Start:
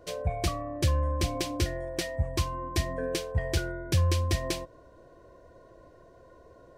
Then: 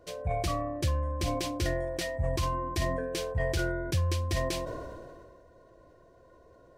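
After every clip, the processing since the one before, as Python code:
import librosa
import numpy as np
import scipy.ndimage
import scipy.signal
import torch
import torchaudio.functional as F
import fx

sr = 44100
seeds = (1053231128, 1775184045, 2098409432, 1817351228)

y = fx.sustainer(x, sr, db_per_s=28.0)
y = F.gain(torch.from_numpy(y), -4.0).numpy()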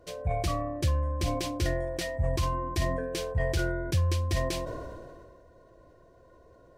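y = fx.low_shelf(x, sr, hz=160.0, db=3.0)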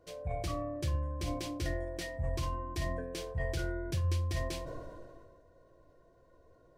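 y = fx.room_shoebox(x, sr, seeds[0], volume_m3=120.0, walls='furnished', distance_m=0.54)
y = F.gain(torch.from_numpy(y), -7.5).numpy()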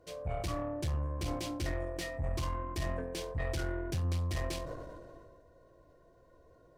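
y = fx.tube_stage(x, sr, drive_db=32.0, bias=0.5)
y = F.gain(torch.from_numpy(y), 3.5).numpy()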